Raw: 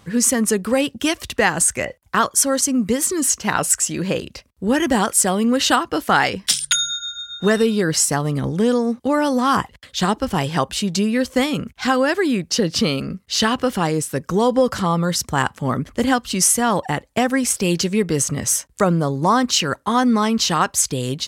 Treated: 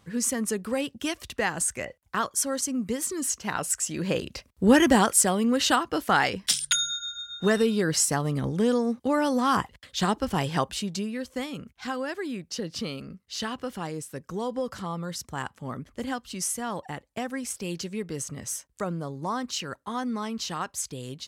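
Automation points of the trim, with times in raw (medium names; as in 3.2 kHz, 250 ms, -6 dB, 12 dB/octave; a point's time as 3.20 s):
3.74 s -10 dB
4.64 s +1.5 dB
5.38 s -6 dB
10.60 s -6 dB
11.18 s -14 dB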